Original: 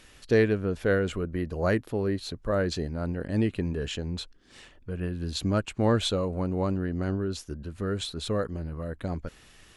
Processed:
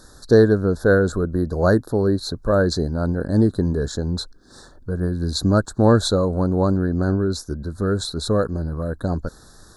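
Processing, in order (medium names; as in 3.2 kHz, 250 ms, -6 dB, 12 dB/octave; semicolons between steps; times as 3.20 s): elliptic band-stop 1.6–3.9 kHz, stop band 40 dB; trim +9 dB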